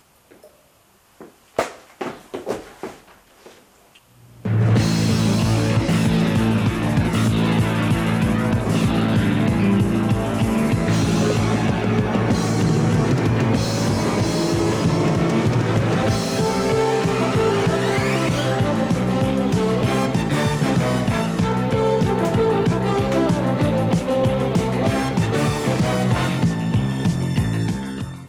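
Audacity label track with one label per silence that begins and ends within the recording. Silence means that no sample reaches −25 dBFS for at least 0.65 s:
2.870000	4.450000	silence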